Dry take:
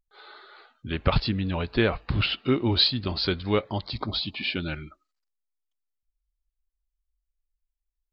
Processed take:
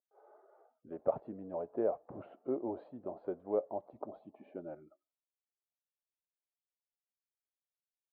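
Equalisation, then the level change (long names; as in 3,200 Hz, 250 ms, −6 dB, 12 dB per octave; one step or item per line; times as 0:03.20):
high-pass filter 360 Hz 12 dB per octave
transistor ladder low-pass 740 Hz, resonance 55%
0.0 dB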